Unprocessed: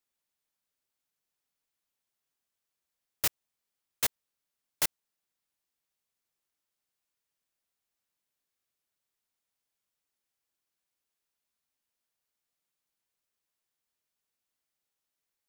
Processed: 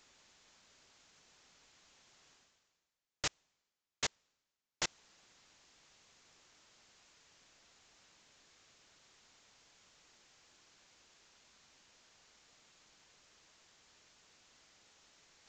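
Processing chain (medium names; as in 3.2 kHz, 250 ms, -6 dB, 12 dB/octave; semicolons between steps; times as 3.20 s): reverse; upward compressor, threshold -36 dBFS; reverse; resampled via 16 kHz; trim -3 dB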